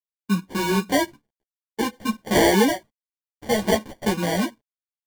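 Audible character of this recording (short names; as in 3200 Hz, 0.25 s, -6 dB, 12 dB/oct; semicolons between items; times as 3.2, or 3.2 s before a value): a quantiser's noise floor 12-bit, dither none; phasing stages 12, 0.49 Hz, lowest notch 350–3500 Hz; aliases and images of a low sample rate 1300 Hz, jitter 0%; a shimmering, thickened sound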